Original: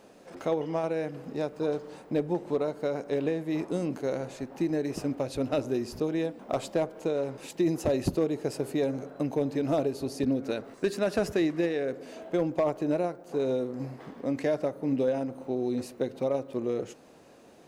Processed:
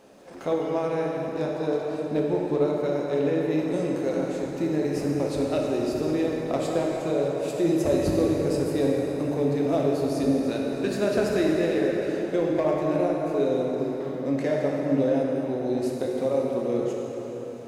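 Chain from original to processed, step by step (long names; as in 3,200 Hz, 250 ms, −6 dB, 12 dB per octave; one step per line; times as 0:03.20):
dense smooth reverb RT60 4.3 s, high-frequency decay 0.7×, DRR −2.5 dB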